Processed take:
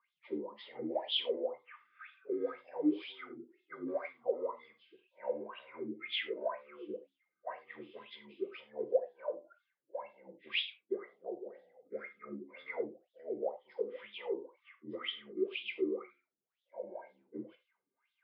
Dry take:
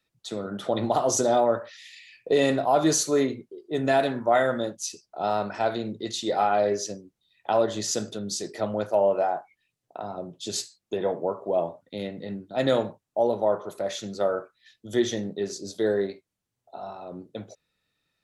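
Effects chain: frequency axis rescaled in octaves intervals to 79%; dynamic bell 2.5 kHz, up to +3 dB, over -42 dBFS, Q 1.3; compression 4:1, threshold -34 dBFS, peak gain reduction 14 dB; wah-wah 2 Hz 300–3600 Hz, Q 11; gated-style reverb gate 120 ms falling, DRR 6 dB; trim +9 dB

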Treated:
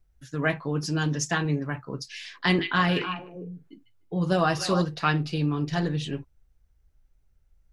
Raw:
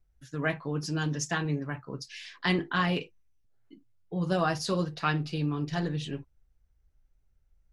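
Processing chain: 2.46–4.82 s: repeats whose band climbs or falls 150 ms, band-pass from 2.7 kHz, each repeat -1.4 oct, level -4 dB; trim +4 dB

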